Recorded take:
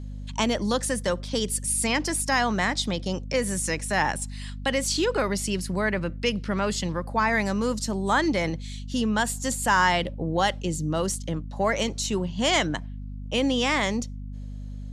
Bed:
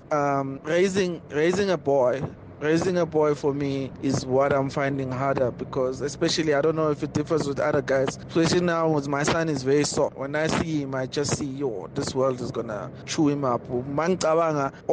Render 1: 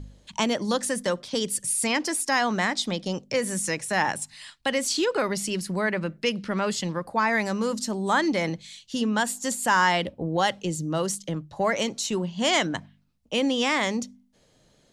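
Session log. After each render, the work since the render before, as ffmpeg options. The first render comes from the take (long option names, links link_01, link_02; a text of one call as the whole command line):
ffmpeg -i in.wav -af "bandreject=frequency=50:width_type=h:width=4,bandreject=frequency=100:width_type=h:width=4,bandreject=frequency=150:width_type=h:width=4,bandreject=frequency=200:width_type=h:width=4,bandreject=frequency=250:width_type=h:width=4" out.wav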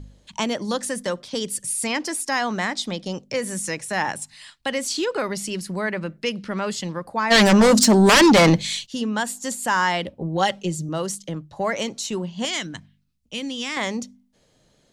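ffmpeg -i in.wav -filter_complex "[0:a]asplit=3[link_01][link_02][link_03];[link_01]afade=type=out:start_time=7.3:duration=0.02[link_04];[link_02]aeval=exprs='0.335*sin(PI/2*4.47*val(0)/0.335)':channel_layout=same,afade=type=in:start_time=7.3:duration=0.02,afade=type=out:start_time=8.85:duration=0.02[link_05];[link_03]afade=type=in:start_time=8.85:duration=0.02[link_06];[link_04][link_05][link_06]amix=inputs=3:normalize=0,asettb=1/sr,asplit=3[link_07][link_08][link_09];[link_07]atrim=end=10.204[link_10];[link_08]atrim=start=10.2:end=10.89,asetpts=PTS-STARTPTS,afade=type=in:duration=0.004:curve=qsin,afade=type=out:start_time=0.686:duration=0.004:curve=qsin,aecho=1:1:5.2:0.63,atrim=end_sample=30429[link_11];[link_09]atrim=start=10.886[link_12];[link_10][link_11]acrossfade=duration=0.004:curve1=hsin:curve2=qsin[link_13];[link_13][link_12]acrossfade=duration=0.004:curve1=qsin:curve2=hsin,asettb=1/sr,asplit=3[link_14][link_15][link_16];[link_14]atrim=end=12.454[link_17];[link_15]atrim=start=12.45:end=13.77,asetpts=PTS-STARTPTS,afade=type=in:duration=0.004:curve=qsin,afade=type=out:start_time=1.316:duration=0.004:curve=qsin,equalizer=frequency=680:width_type=o:width=2.4:gain=-12.5[link_18];[link_16]atrim=start=13.766[link_19];[link_17][link_18]acrossfade=duration=0.004:curve1=hsin:curve2=qsin[link_20];[link_20][link_19]acrossfade=duration=0.004:curve1=qsin:curve2=hsin" out.wav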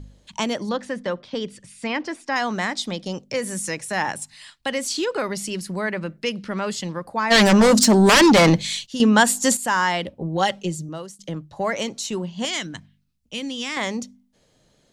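ffmpeg -i in.wav -filter_complex "[0:a]asettb=1/sr,asplit=3[link_01][link_02][link_03];[link_01]atrim=end=0.694[link_04];[link_02]atrim=start=0.69:end=2.36,asetpts=PTS-STARTPTS,afade=type=in:duration=0.004:curve=qsin,afade=type=out:start_time=1.666:duration=0.004:curve=qsin,lowpass=3100[link_05];[link_03]atrim=start=2.356[link_06];[link_04][link_05]acrossfade=duration=0.004:curve1=hsin:curve2=qsin[link_07];[link_07][link_06]acrossfade=duration=0.004:curve1=qsin:curve2=hsin,asplit=4[link_08][link_09][link_10][link_11];[link_08]atrim=end=9.002[link_12];[link_09]atrim=start=8.998:end=9.572,asetpts=PTS-STARTPTS,volume=9.5dB[link_13];[link_10]atrim=start=9.568:end=11.19,asetpts=PTS-STARTPTS,afade=type=out:start_time=1.082:duration=0.54:silence=0.0944061[link_14];[link_11]atrim=start=11.19,asetpts=PTS-STARTPTS,afade=type=in:duration=0.004:curve=hsin:silence=0.0944061[link_15];[link_12][link_13]acrossfade=duration=0.004:curve1=hsin:curve2=hsin[link_16];[link_14][link_15]concat=n=2:v=0:a=1[link_17];[link_16][link_17]acrossfade=duration=0.004:curve1=hsin:curve2=hsin" out.wav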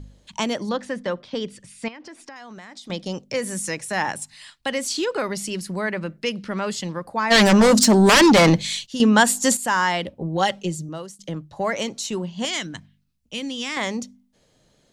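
ffmpeg -i in.wav -filter_complex "[0:a]asettb=1/sr,asplit=3[link_01][link_02][link_03];[link_01]atrim=end=1.884[link_04];[link_02]atrim=start=1.88:end=2.9,asetpts=PTS-STARTPTS,afade=type=in:duration=0.004:curve=qsin,afade=type=out:start_time=1.016:duration=0.004:curve=qsin,acompressor=threshold=-37dB:ratio=8:attack=3.2:release=140:knee=1:detection=peak[link_05];[link_03]atrim=start=2.896[link_06];[link_04][link_05]acrossfade=duration=0.004:curve1=hsin:curve2=qsin[link_07];[link_07][link_06]acrossfade=duration=0.004:curve1=qsin:curve2=hsin" out.wav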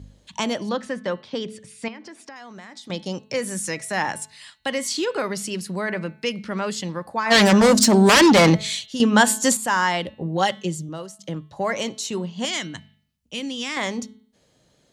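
ffmpeg -i in.wav -af "highpass=46,bandreject=frequency=216.8:width_type=h:width=4,bandreject=frequency=433.6:width_type=h:width=4,bandreject=frequency=650.4:width_type=h:width=4,bandreject=frequency=867.2:width_type=h:width=4,bandreject=frequency=1084:width_type=h:width=4,bandreject=frequency=1300.8:width_type=h:width=4,bandreject=frequency=1517.6:width_type=h:width=4,bandreject=frequency=1734.4:width_type=h:width=4,bandreject=frequency=1951.2:width_type=h:width=4,bandreject=frequency=2168:width_type=h:width=4,bandreject=frequency=2384.8:width_type=h:width=4,bandreject=frequency=2601.6:width_type=h:width=4,bandreject=frequency=2818.4:width_type=h:width=4,bandreject=frequency=3035.2:width_type=h:width=4,bandreject=frequency=3252:width_type=h:width=4,bandreject=frequency=3468.8:width_type=h:width=4,bandreject=frequency=3685.6:width_type=h:width=4,bandreject=frequency=3902.4:width_type=h:width=4,bandreject=frequency=4119.2:width_type=h:width=4,bandreject=frequency=4336:width_type=h:width=4" out.wav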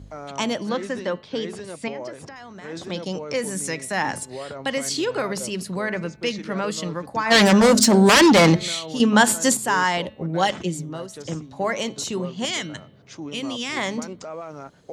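ffmpeg -i in.wav -i bed.wav -filter_complex "[1:a]volume=-13.5dB[link_01];[0:a][link_01]amix=inputs=2:normalize=0" out.wav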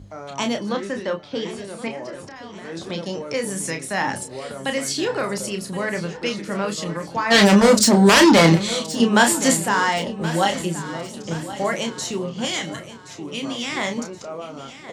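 ffmpeg -i in.wav -filter_complex "[0:a]asplit=2[link_01][link_02];[link_02]adelay=30,volume=-6.5dB[link_03];[link_01][link_03]amix=inputs=2:normalize=0,aecho=1:1:1073|2146|3219|4292:0.178|0.0836|0.0393|0.0185" out.wav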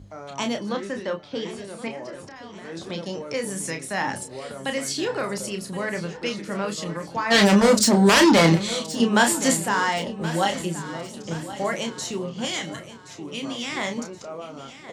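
ffmpeg -i in.wav -af "volume=-3dB" out.wav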